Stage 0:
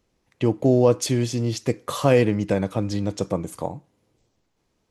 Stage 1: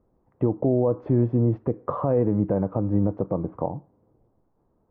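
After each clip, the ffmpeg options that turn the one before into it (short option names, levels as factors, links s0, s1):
-af "lowpass=f=1100:w=0.5412,lowpass=f=1100:w=1.3066,alimiter=limit=0.15:level=0:latency=1:release=164,volume=1.68"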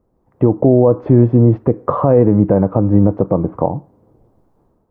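-af "dynaudnorm=f=130:g=5:m=2.66,volume=1.41"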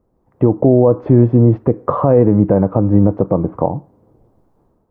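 -af anull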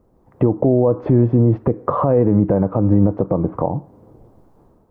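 -af "alimiter=limit=0.266:level=0:latency=1:release=311,volume=2"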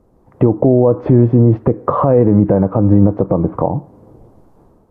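-af "volume=1.58" -ar 32000 -c:a libvorbis -b:a 64k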